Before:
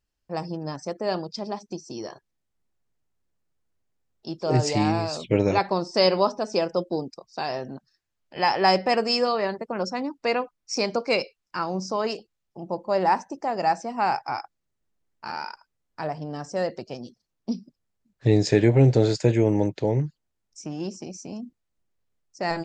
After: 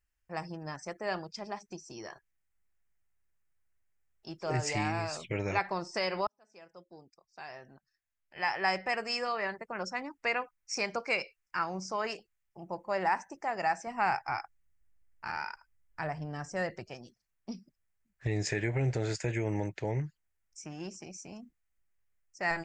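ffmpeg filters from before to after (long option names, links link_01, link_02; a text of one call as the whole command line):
ffmpeg -i in.wav -filter_complex "[0:a]asettb=1/sr,asplit=3[link_01][link_02][link_03];[link_01]atrim=end=13.874[link_04];[link_02]atrim=start=13.87:end=16.89,asetpts=PTS-STARTPTS,afade=type=in:duration=0.004:curve=qsin,afade=type=out:start_time=3.016:duration=0.004:curve=qsin,lowshelf=frequency=170:gain=10.5[link_05];[link_03]atrim=start=16.886[link_06];[link_04][link_05]acrossfade=duration=0.004:curve1=hsin:curve2=qsin[link_07];[link_07][link_06]acrossfade=duration=0.004:curve1=qsin:curve2=hsin,asplit=2[link_08][link_09];[link_08]atrim=end=6.27,asetpts=PTS-STARTPTS,afade=type=out:start_time=6.266:duration=0.004:curve=hsin[link_10];[link_09]atrim=start=6.27,asetpts=PTS-STARTPTS,afade=type=in:duration=3.94[link_11];[link_10][link_11]concat=n=2:v=0:a=1,alimiter=limit=-13dB:level=0:latency=1:release=135,equalizer=frequency=125:width_type=o:width=1:gain=-6,equalizer=frequency=250:width_type=o:width=1:gain=-11,equalizer=frequency=500:width_type=o:width=1:gain=-8,equalizer=frequency=1000:width_type=o:width=1:gain=-4,equalizer=frequency=2000:width_type=o:width=1:gain=6,equalizer=frequency=4000:width_type=o:width=1:gain=-12" out.wav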